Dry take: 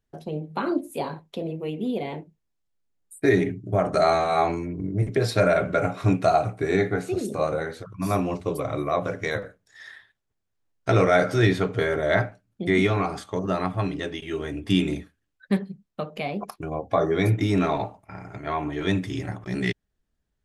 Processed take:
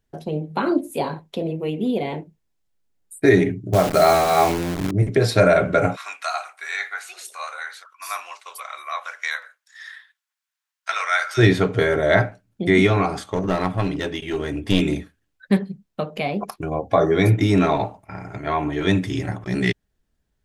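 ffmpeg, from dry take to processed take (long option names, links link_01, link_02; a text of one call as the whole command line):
ffmpeg -i in.wav -filter_complex "[0:a]asettb=1/sr,asplit=3[link_01][link_02][link_03];[link_01]atrim=end=3.734[link_04];[link_02]atrim=start=3.73:end=4.91,asetpts=PTS-STARTPTS,afade=type=in:duration=0.004:curve=qsin,afade=type=out:start_time=1.176:duration=0.004:curve=qsin,acrusher=bits=6:dc=4:mix=0:aa=0.000001[link_05];[link_03]atrim=start=4.906[link_06];[link_04][link_05]acrossfade=duration=0.004:curve1=hsin:curve2=qsin[link_07];[link_07][link_06]acrossfade=duration=0.004:curve1=qsin:curve2=hsin,asplit=3[link_08][link_09][link_10];[link_08]afade=type=out:start_time=5.95:duration=0.02[link_11];[link_09]highpass=frequency=1100:width=0.5412,highpass=frequency=1100:width=1.3066,afade=type=in:start_time=5.95:duration=0.02,afade=type=out:start_time=11.37:duration=0.02[link_12];[link_10]afade=type=in:start_time=11.37:duration=0.02[link_13];[link_11][link_12][link_13]amix=inputs=3:normalize=0,asplit=3[link_14][link_15][link_16];[link_14]afade=type=out:start_time=13.28:duration=0.02[link_17];[link_15]aeval=exprs='clip(val(0),-1,0.0473)':channel_layout=same,afade=type=in:start_time=13.28:duration=0.02,afade=type=out:start_time=14.8:duration=0.02[link_18];[link_16]afade=type=in:start_time=14.8:duration=0.02[link_19];[link_17][link_18][link_19]amix=inputs=3:normalize=0,bandreject=frequency=1200:width=23,volume=5dB" out.wav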